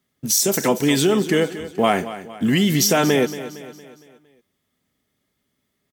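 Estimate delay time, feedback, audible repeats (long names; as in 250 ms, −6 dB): 230 ms, 48%, 4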